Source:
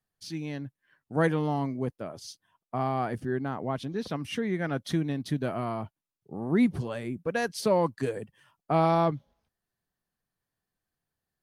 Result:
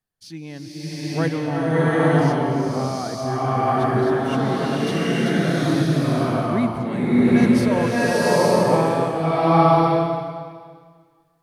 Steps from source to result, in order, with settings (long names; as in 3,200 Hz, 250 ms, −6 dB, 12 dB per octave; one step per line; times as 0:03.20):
slow-attack reverb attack 880 ms, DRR −10.5 dB